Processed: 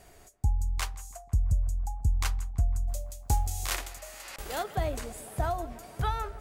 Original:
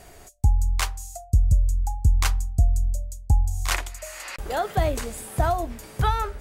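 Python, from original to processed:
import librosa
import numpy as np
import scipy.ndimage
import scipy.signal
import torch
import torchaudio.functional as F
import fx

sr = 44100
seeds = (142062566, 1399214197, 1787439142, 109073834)

p1 = fx.envelope_flatten(x, sr, power=0.6, at=(2.87, 4.62), fade=0.02)
p2 = p1 + fx.echo_tape(p1, sr, ms=167, feedback_pct=89, wet_db=-17, lp_hz=1800.0, drive_db=5.0, wow_cents=15, dry=0)
y = p2 * 10.0 ** (-7.5 / 20.0)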